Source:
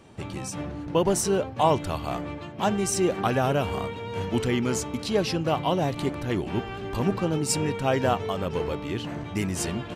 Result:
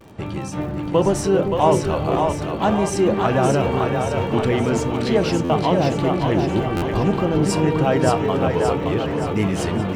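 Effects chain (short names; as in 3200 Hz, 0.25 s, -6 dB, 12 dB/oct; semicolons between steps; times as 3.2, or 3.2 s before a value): LPF 2300 Hz 6 dB/oct; de-hum 80.43 Hz, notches 3; in parallel at -1.5 dB: limiter -19.5 dBFS, peak gain reduction 9 dB; on the sum: crackle 70/s -38 dBFS; vibrato 0.44 Hz 31 cents; split-band echo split 460 Hz, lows 0.397 s, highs 0.573 s, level -4 dB; on a send at -12 dB: reverb RT60 0.30 s, pre-delay 6 ms; on the sum: stuck buffer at 5.44/6.76, samples 512, times 4; gain +1.5 dB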